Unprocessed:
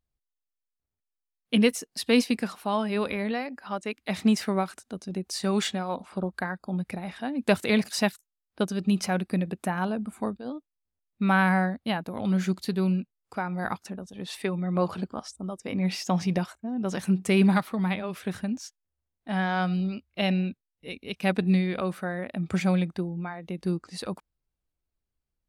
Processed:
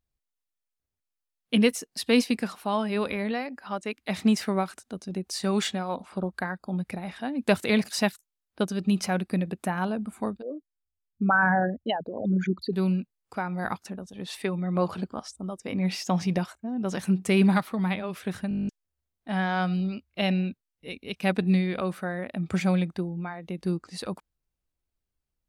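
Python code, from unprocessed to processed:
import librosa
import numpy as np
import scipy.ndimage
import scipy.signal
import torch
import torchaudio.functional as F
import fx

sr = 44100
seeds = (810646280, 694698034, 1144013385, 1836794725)

y = fx.envelope_sharpen(x, sr, power=3.0, at=(10.42, 12.73))
y = fx.edit(y, sr, fx.stutter_over(start_s=18.49, slice_s=0.02, count=10), tone=tone)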